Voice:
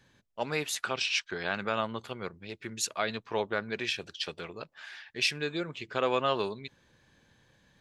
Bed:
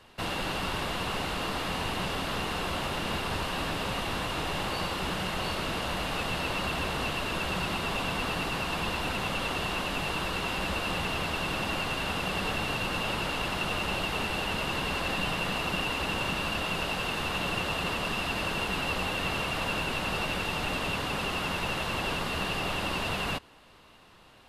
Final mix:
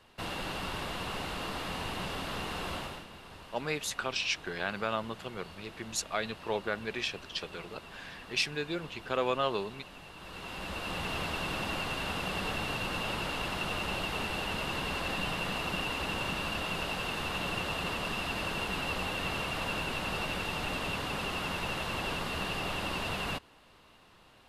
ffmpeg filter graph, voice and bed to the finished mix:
ffmpeg -i stem1.wav -i stem2.wav -filter_complex "[0:a]adelay=3150,volume=-2dB[link_01];[1:a]volume=9.5dB,afade=type=out:start_time=2.74:duration=0.33:silence=0.223872,afade=type=in:start_time=10.16:duration=1.01:silence=0.188365[link_02];[link_01][link_02]amix=inputs=2:normalize=0" out.wav

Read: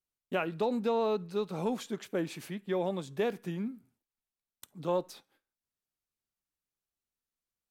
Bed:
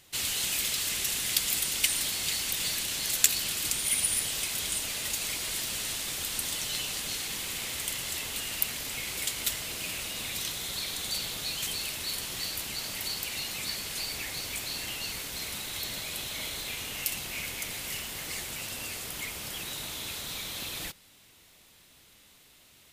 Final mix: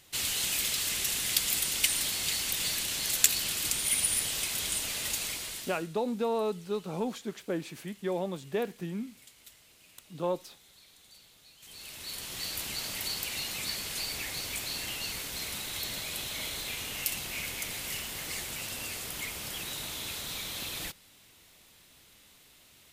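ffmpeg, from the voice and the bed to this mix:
ffmpeg -i stem1.wav -i stem2.wav -filter_complex "[0:a]adelay=5350,volume=-0.5dB[link_01];[1:a]volume=22.5dB,afade=type=out:start_time=5.15:duration=0.73:silence=0.0707946,afade=type=in:start_time=11.6:duration=1.05:silence=0.0707946[link_02];[link_01][link_02]amix=inputs=2:normalize=0" out.wav

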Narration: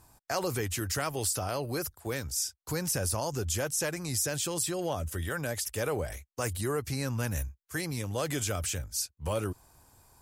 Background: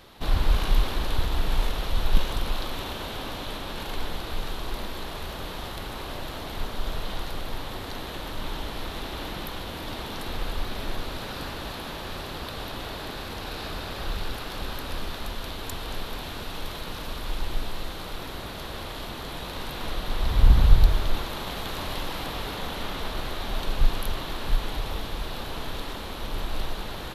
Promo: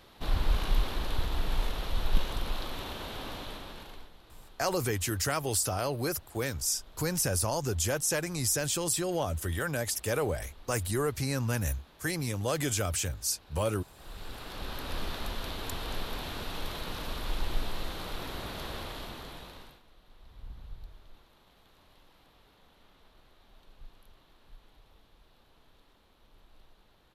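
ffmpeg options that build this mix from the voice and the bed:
ffmpeg -i stem1.wav -i stem2.wav -filter_complex "[0:a]adelay=4300,volume=1.5dB[link_01];[1:a]volume=15dB,afade=type=out:start_time=3.35:duration=0.75:silence=0.133352,afade=type=in:start_time=13.94:duration=1.09:silence=0.0944061,afade=type=out:start_time=18.68:duration=1.14:silence=0.0446684[link_02];[link_01][link_02]amix=inputs=2:normalize=0" out.wav

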